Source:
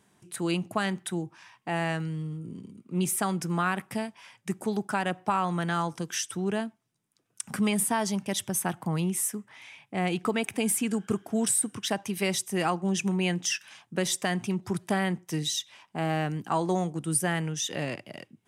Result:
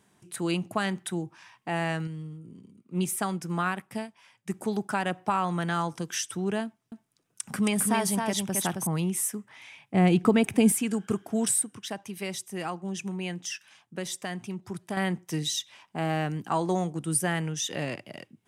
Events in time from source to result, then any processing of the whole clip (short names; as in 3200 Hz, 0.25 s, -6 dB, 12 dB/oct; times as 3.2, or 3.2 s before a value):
2.07–4.54 upward expander, over -38 dBFS
6.65–8.87 echo 0.268 s -4 dB
9.94–10.72 low shelf 450 Hz +11 dB
11.63–14.97 gain -6.5 dB